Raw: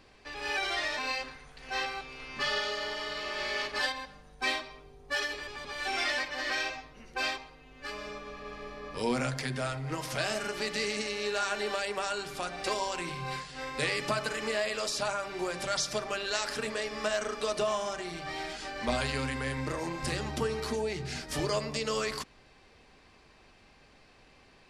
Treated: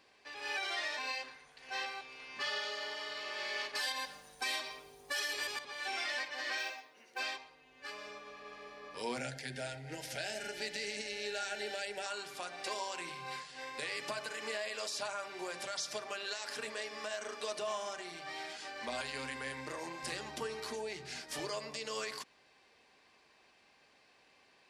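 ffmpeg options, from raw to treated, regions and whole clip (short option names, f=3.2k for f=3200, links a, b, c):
-filter_complex "[0:a]asettb=1/sr,asplit=3[a][b][c];[a]atrim=end=3.754[d];[b]atrim=start=3.75:end=5.59,asetpts=PTS-STARTPTS,afade=t=in:d=0.004:c=qsin,afade=t=out:st=1.836:d=0.004:c=qsin,aemphasis=mode=production:type=50fm,acontrast=87,asoftclip=type=hard:threshold=-12dB[e];[c]atrim=start=5.586[f];[d][e]acrossfade=d=0.004:c1=hsin:c2=qsin[g];[g][f]acrossfade=d=0.004:c1=qsin:c2=hsin,asettb=1/sr,asplit=3[h][i][j];[h]atrim=end=6.584[k];[i]atrim=start=6.58:end=7.19,asetpts=PTS-STARTPTS,afade=t=in:d=0.004:c=qsin,afade=t=out:st=0.606:d=0.004:c=qsin,highpass=270,bandreject=f=1.1k:w=13,acrusher=bits=6:mode=log:mix=0:aa=0.000001[l];[j]atrim=start=7.186[m];[k][l]acrossfade=d=0.004:c1=hsin:c2=qsin[n];[n][m]acrossfade=d=0.004:c1=qsin:c2=hsin,asettb=1/sr,asplit=3[o][p][q];[o]atrim=end=9.174[r];[p]atrim=start=9.17:end=12.06,asetpts=PTS-STARTPTS,afade=t=in:d=0.004:c=qsin,afade=t=out:st=2.886:d=0.004:c=qsin,asuperstop=centerf=1100:order=4:qfactor=2.2,equalizer=f=62:t=o:w=1.8:g=13[s];[q]atrim=start=12.056[t];[r][s]acrossfade=d=0.004:c1=hsin:c2=qsin[u];[u][t]acrossfade=d=0.004:c1=qsin:c2=hsin,highpass=f=550:p=1,bandreject=f=1.3k:w=14,alimiter=limit=-22.5dB:level=0:latency=1:release=112,volume=-4.5dB"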